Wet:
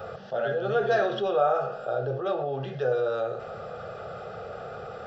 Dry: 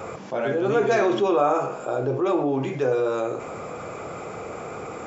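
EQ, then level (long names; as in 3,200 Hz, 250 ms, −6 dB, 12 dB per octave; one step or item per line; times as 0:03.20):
phaser with its sweep stopped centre 1,500 Hz, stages 8
−1.0 dB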